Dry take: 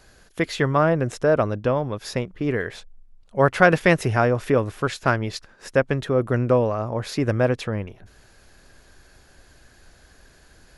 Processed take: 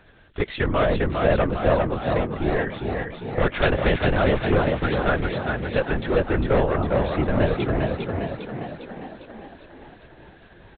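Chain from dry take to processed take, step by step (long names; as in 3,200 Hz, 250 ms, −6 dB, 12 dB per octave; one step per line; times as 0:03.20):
gain into a clipping stage and back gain 15.5 dB
linear-prediction vocoder at 8 kHz whisper
on a send: echo with shifted repeats 403 ms, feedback 58%, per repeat +43 Hz, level −4 dB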